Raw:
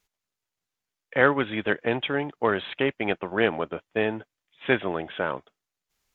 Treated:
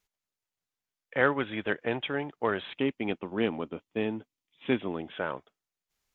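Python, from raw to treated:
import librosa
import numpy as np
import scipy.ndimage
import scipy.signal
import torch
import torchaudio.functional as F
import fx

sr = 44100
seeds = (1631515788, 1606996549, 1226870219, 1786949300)

y = fx.graphic_eq_15(x, sr, hz=(250, 630, 1600), db=(7, -6, -9), at=(2.72, 5.12))
y = y * librosa.db_to_amplitude(-5.0)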